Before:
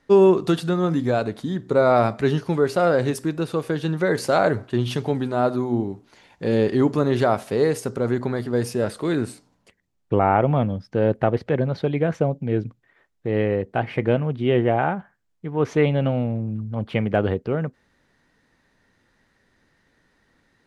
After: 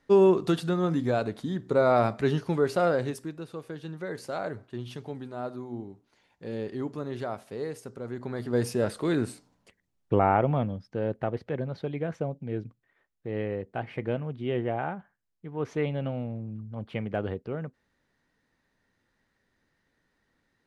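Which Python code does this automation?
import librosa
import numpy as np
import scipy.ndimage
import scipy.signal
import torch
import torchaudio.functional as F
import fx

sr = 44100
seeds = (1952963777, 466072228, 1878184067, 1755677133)

y = fx.gain(x, sr, db=fx.line((2.84, -5.0), (3.43, -14.5), (8.1, -14.5), (8.56, -3.5), (10.19, -3.5), (11.04, -10.0)))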